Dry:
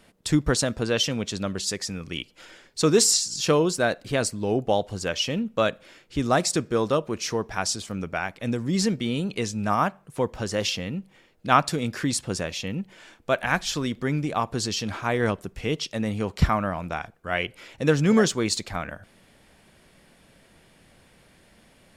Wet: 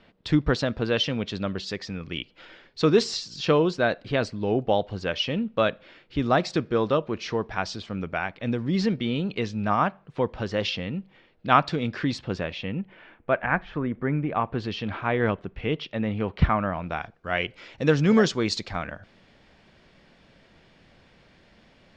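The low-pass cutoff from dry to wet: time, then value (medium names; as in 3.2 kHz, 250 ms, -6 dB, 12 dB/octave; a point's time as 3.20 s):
low-pass 24 dB/octave
12.17 s 4.2 kHz
13.89 s 1.8 kHz
14.72 s 3.3 kHz
16.67 s 3.3 kHz
17.17 s 5.5 kHz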